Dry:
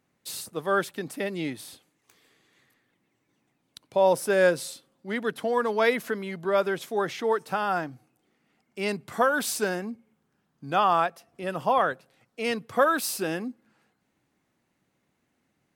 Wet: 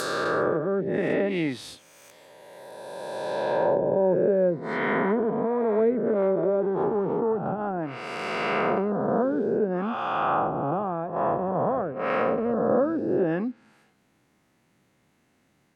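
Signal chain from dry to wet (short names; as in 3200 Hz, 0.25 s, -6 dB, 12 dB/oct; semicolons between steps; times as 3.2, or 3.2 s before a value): spectral swells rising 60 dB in 2.73 s; treble ducked by the level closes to 390 Hz, closed at -19 dBFS; gain +3.5 dB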